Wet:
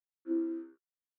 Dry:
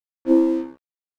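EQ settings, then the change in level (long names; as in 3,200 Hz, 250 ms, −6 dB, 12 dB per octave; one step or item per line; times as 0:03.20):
pair of resonant band-passes 720 Hz, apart 1.9 octaves
−9.0 dB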